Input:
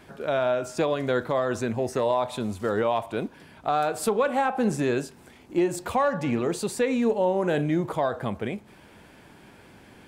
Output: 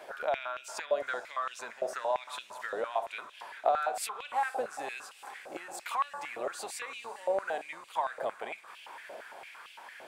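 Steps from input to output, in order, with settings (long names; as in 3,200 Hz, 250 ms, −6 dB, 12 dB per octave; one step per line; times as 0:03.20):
sub-octave generator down 1 octave, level −1 dB
downward compressor 6 to 1, threshold −32 dBFS, peak gain reduction 14 dB
feedback delay with all-pass diffusion 459 ms, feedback 71%, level −16 dB
high-pass on a step sequencer 8.8 Hz 600–2,800 Hz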